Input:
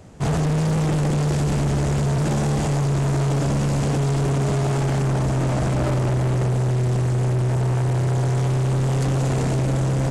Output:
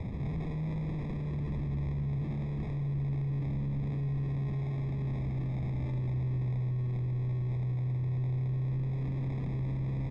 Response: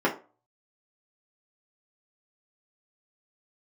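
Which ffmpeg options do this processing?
-filter_complex "[0:a]acrossover=split=300[s0][s1];[s1]acrusher=samples=30:mix=1:aa=0.000001[s2];[s0][s2]amix=inputs=2:normalize=0,lowpass=1700,bandreject=f=50:t=h:w=6,bandreject=f=100:t=h:w=6,bandreject=f=150:t=h:w=6,asplit=2[s3][s4];[s4]aecho=0:1:86:0.237[s5];[s3][s5]amix=inputs=2:normalize=0,acontrast=51,alimiter=level_in=2.82:limit=0.0631:level=0:latency=1,volume=0.355,equalizer=f=720:w=0.48:g=-13.5,volume=2.37"

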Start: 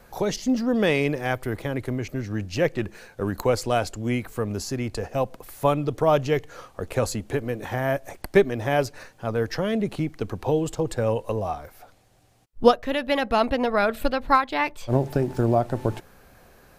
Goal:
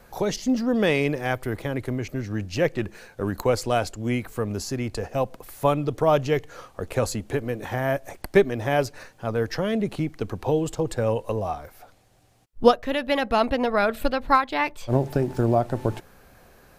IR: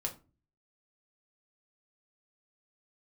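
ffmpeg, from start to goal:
-filter_complex "[0:a]asettb=1/sr,asplit=3[s0][s1][s2];[s0]atrim=end=3.224[s3];[s1]atrim=start=3.22:end=4.16,asetpts=PTS-STARTPTS,afade=t=in:d=0.004:c=qsin,afade=t=out:st=0.936:d=0.004:c=qsin,agate=range=0.0224:threshold=0.0282:ratio=3:detection=peak[s4];[s2]atrim=start=4.156[s5];[s3][s4]acrossfade=d=0.004:c1=hsin:c2=qsin[s6];[s6][s5]acrossfade=d=0.004:c1=qsin:c2=hsin"

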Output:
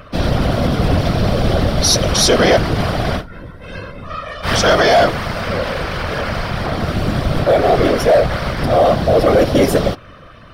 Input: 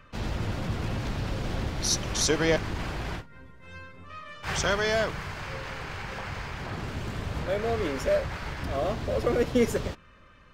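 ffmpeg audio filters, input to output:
-af "superequalizer=8b=2:9b=0.631:11b=0.708:12b=0.631:15b=0.355,afftfilt=real='hypot(re,im)*cos(2*PI*random(0))':imag='hypot(re,im)*sin(2*PI*random(1))':win_size=512:overlap=0.75,apsyclip=23.7,volume=0.501"

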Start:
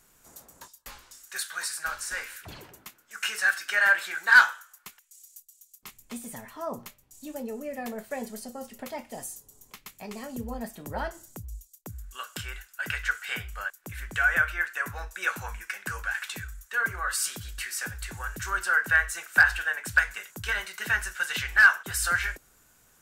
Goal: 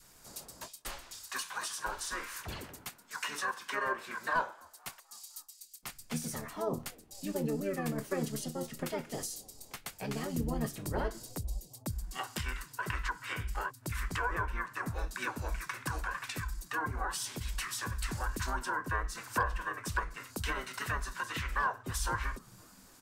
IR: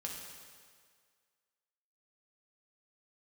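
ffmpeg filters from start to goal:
-filter_complex "[0:a]asplit=2[s0][s1];[s1]asetrate=29433,aresample=44100,atempo=1.49831,volume=0.891[s2];[s0][s2]amix=inputs=2:normalize=0,acrossover=split=660[s3][s4];[s3]asplit=5[s5][s6][s7][s8][s9];[s6]adelay=254,afreqshift=71,volume=0.0668[s10];[s7]adelay=508,afreqshift=142,volume=0.0403[s11];[s8]adelay=762,afreqshift=213,volume=0.024[s12];[s9]adelay=1016,afreqshift=284,volume=0.0145[s13];[s5][s10][s11][s12][s13]amix=inputs=5:normalize=0[s14];[s4]acompressor=threshold=0.0158:ratio=6[s15];[s14][s15]amix=inputs=2:normalize=0,adynamicequalizer=threshold=0.00316:dfrequency=690:dqfactor=1.2:tfrequency=690:tqfactor=1.2:attack=5:release=100:ratio=0.375:range=2.5:mode=cutabove:tftype=bell"

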